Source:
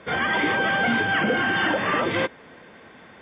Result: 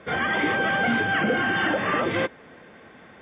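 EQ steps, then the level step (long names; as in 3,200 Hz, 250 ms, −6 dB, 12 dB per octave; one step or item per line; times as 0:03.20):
high-frequency loss of the air 150 metres
notch filter 960 Hz, Q 13
0.0 dB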